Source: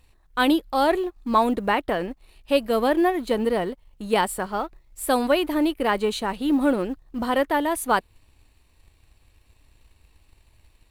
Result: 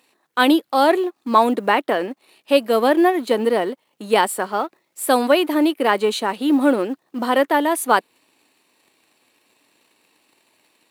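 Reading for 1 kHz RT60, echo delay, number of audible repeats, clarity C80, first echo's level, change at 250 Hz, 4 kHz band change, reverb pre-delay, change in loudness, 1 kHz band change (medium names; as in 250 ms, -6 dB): no reverb, no echo, no echo, no reverb, no echo, +4.0 dB, +5.0 dB, no reverb, +4.5 dB, +5.0 dB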